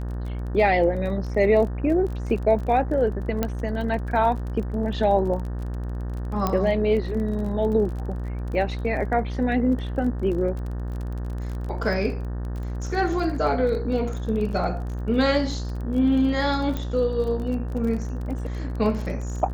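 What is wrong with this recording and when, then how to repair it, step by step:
mains buzz 60 Hz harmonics 31 −29 dBFS
surface crackle 27 per second −32 dBFS
0:03.43: click −10 dBFS
0:06.47: click −10 dBFS
0:16.77: click −16 dBFS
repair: click removal
hum removal 60 Hz, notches 31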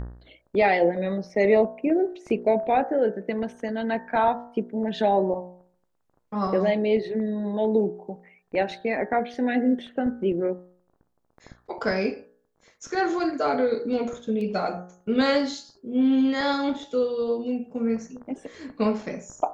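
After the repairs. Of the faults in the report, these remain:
none of them is left

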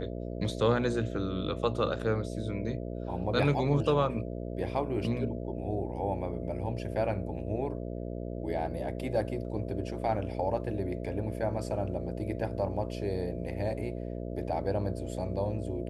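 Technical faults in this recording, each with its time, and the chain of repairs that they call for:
mains buzz 60 Hz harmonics 11 −37 dBFS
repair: hum removal 60 Hz, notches 11

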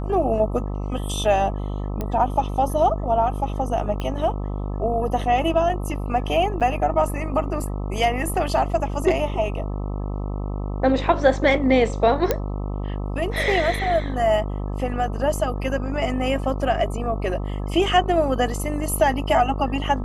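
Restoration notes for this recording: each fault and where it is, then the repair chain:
mains buzz 50 Hz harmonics 26 −27 dBFS
0:02.01: click −14 dBFS
0:04.00: click −16 dBFS
0:06.60–0:06.61: drop-out 8.2 ms
0:12.31: click −6 dBFS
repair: click removal
hum removal 50 Hz, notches 26
repair the gap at 0:06.60, 8.2 ms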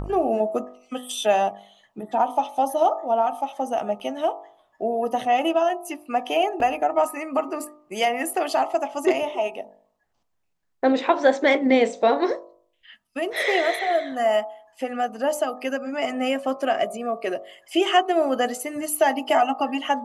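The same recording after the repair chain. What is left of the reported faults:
0:04.00: click

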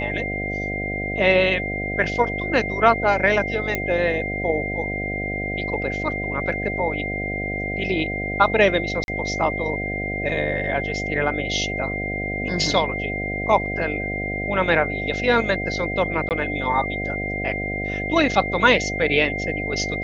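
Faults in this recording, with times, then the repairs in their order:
mains buzz 50 Hz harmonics 15 −29 dBFS
whistle 2,100 Hz −27 dBFS
0:03.75: click −9 dBFS
0:09.04–0:09.08: drop-out 41 ms
0:16.29–0:16.31: drop-out 18 ms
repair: click removal
hum removal 50 Hz, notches 15
notch filter 2,100 Hz, Q 30
repair the gap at 0:09.04, 41 ms
repair the gap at 0:16.29, 18 ms

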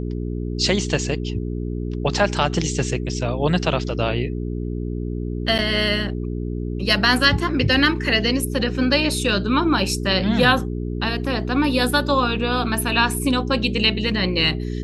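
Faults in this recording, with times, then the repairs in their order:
mains hum 60 Hz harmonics 7 −26 dBFS
0:05.58–0:05.59: drop-out 7.8 ms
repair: hum removal 60 Hz, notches 7
repair the gap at 0:05.58, 7.8 ms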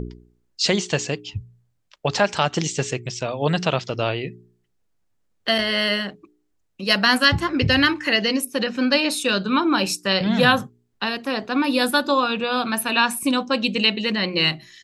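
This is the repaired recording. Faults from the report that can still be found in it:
none of them is left

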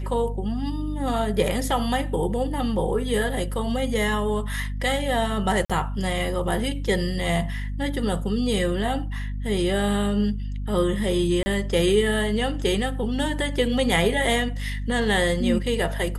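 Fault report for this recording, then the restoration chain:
mains hum 50 Hz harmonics 5 −29 dBFS
0:05.65–0:05.70: drop-out 46 ms
0:11.43–0:11.46: drop-out 30 ms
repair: hum removal 50 Hz, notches 5
repair the gap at 0:05.65, 46 ms
repair the gap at 0:11.43, 30 ms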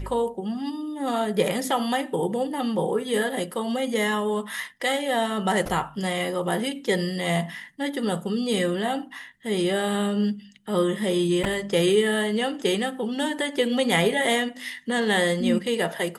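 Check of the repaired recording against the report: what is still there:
none of them is left

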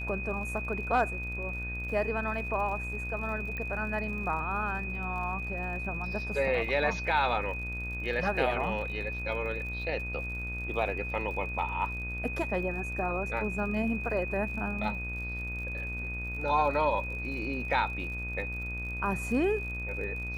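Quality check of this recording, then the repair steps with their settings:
mains buzz 60 Hz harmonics 33 −38 dBFS
surface crackle 54 per second −41 dBFS
whistle 2,500 Hz −36 dBFS
0:03.57: click −25 dBFS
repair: click removal
hum removal 60 Hz, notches 33
notch filter 2,500 Hz, Q 30

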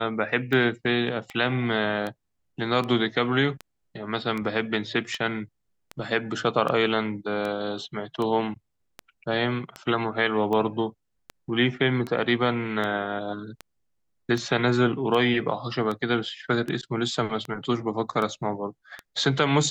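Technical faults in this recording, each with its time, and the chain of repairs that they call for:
scratch tick 78 rpm −18 dBFS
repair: click removal

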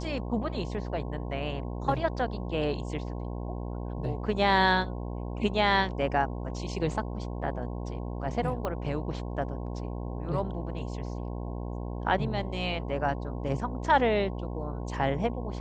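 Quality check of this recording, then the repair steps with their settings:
mains buzz 60 Hz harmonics 18 −35 dBFS
0:08.65: click −19 dBFS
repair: click removal
hum removal 60 Hz, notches 18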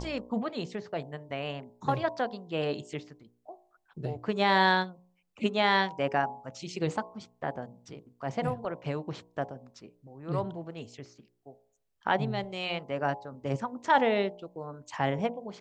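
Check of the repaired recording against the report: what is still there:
0:08.65: click

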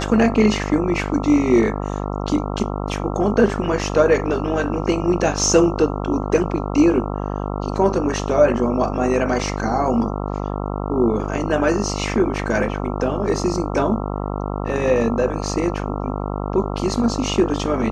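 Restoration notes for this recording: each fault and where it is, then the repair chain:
mains buzz 50 Hz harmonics 27 −25 dBFS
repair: hum removal 50 Hz, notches 27

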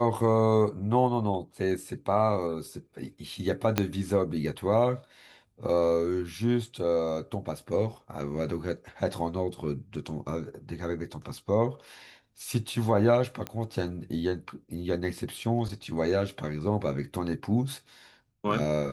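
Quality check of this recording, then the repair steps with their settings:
0:03.78: click −8 dBFS
0:13.47: click −18 dBFS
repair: click removal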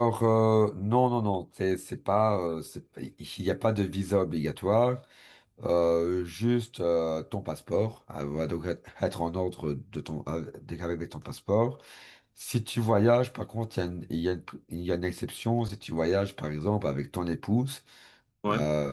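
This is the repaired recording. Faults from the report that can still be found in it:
0:03.78: click

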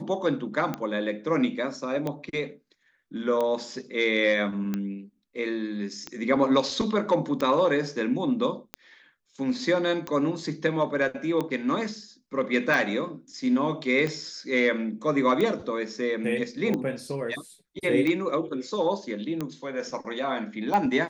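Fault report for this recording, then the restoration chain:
scratch tick 45 rpm −16 dBFS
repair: click removal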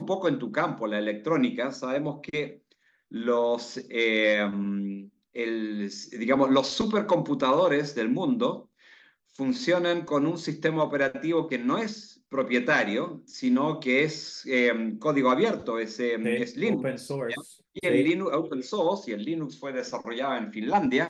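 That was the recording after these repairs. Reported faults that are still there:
none of them is left

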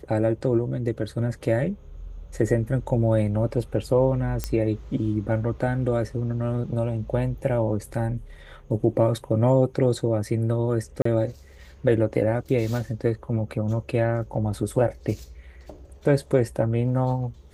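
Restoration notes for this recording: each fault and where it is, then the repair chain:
0:04.44: click −11 dBFS
0:11.02–0:11.05: drop-out 34 ms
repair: click removal
repair the gap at 0:11.02, 34 ms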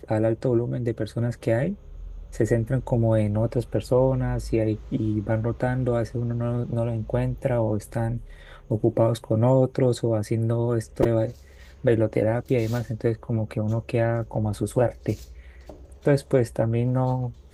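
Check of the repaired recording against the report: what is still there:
none of them is left

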